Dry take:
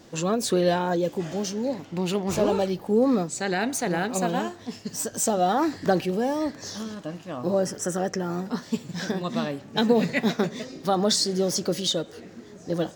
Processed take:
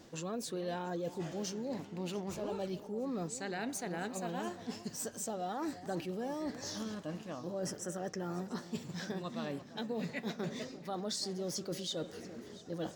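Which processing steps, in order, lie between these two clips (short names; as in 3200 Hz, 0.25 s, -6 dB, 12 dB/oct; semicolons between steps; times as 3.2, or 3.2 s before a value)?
reverse; compressor, threshold -31 dBFS, peak gain reduction 15.5 dB; reverse; echo with dull and thin repeats by turns 0.344 s, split 1100 Hz, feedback 56%, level -13.5 dB; gain -5 dB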